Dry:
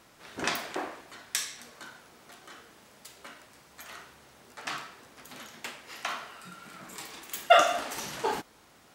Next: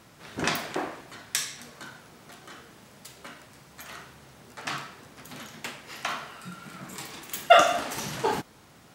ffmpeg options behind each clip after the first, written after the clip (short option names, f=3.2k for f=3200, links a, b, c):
-af "equalizer=f=130:t=o:w=1.6:g=9,volume=2.5dB"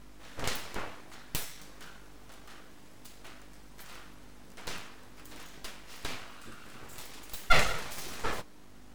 -af "aeval=exprs='val(0)+0.00631*(sin(2*PI*50*n/s)+sin(2*PI*2*50*n/s)/2+sin(2*PI*3*50*n/s)/3+sin(2*PI*4*50*n/s)/4+sin(2*PI*5*50*n/s)/5)':c=same,aeval=exprs='abs(val(0))':c=same,flanger=delay=4.9:depth=5.3:regen=-55:speed=0.53:shape=triangular"